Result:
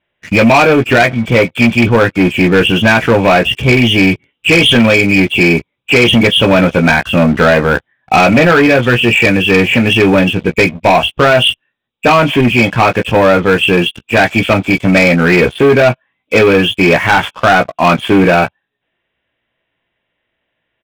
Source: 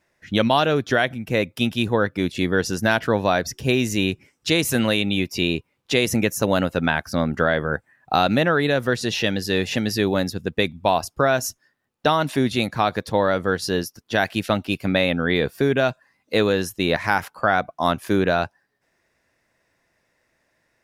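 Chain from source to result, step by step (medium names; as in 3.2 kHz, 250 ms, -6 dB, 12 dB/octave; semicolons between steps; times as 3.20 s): knee-point frequency compression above 2.2 kHz 4:1; early reflections 17 ms -6 dB, 31 ms -18 dB; waveshaping leveller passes 3; trim +2.5 dB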